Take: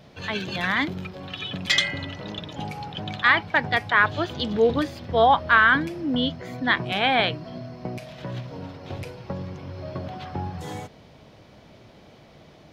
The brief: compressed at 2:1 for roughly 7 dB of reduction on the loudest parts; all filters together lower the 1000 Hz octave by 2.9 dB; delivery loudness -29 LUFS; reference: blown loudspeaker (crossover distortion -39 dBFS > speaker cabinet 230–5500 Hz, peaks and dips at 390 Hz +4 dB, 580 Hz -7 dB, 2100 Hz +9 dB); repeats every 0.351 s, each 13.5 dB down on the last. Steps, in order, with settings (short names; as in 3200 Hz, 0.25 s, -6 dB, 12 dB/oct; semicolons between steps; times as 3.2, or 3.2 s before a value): bell 1000 Hz -3.5 dB; compressor 2:1, threshold -27 dBFS; feedback echo 0.351 s, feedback 21%, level -13.5 dB; crossover distortion -39 dBFS; speaker cabinet 230–5500 Hz, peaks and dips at 390 Hz +4 dB, 580 Hz -7 dB, 2100 Hz +9 dB; gain -0.5 dB